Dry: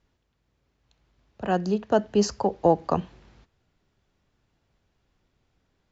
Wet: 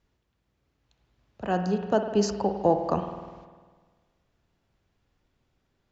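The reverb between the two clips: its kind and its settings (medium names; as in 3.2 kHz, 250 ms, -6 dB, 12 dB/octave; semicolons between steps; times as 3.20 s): spring tank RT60 1.5 s, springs 50 ms, chirp 65 ms, DRR 6.5 dB; trim -2.5 dB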